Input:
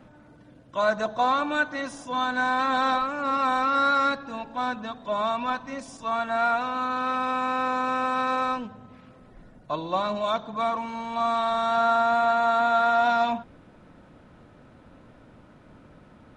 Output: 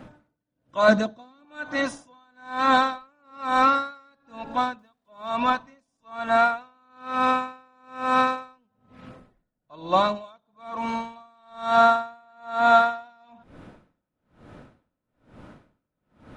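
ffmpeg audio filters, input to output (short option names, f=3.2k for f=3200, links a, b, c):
-filter_complex "[0:a]asettb=1/sr,asplit=3[a][b][c];[a]atrim=end=0.884[d];[b]atrim=start=0.88:end=1.45,asetpts=PTS-STARTPTS,afade=t=in:d=0.004:c=qsin,afade=t=out:st=0.566:d=0.004:c=qsin,equalizer=f=250:t=o:w=1:g=11,equalizer=f=1k:t=o:w=1:g=-5,equalizer=f=4k:t=o:w=1:g=3[e];[c]atrim=start=1.446[f];[d][e]acrossfade=d=0.004:c1=hsin:c2=qsin[g];[g][f]acrossfade=d=0.004:c1=qsin:c2=hsin,asettb=1/sr,asplit=3[h][i][j];[h]atrim=end=4.794[k];[i]atrim=start=4.79:end=5.28,asetpts=PTS-STARTPTS,afade=t=in:d=0.004:c=qsin,afade=t=out:st=0.486:d=0.004:c=qsin,aeval=exprs='val(0)*gte(abs(val(0)),0.00376)':c=same[l];[j]atrim=start=5.276[m];[k][l]acrossfade=d=0.004:c1=hsin:c2=qsin[n];[n][m]acrossfade=d=0.004:c1=qsin:c2=hsin,aeval=exprs='val(0)*pow(10,-40*(0.5-0.5*cos(2*PI*1.1*n/s))/20)':c=same,volume=7dB"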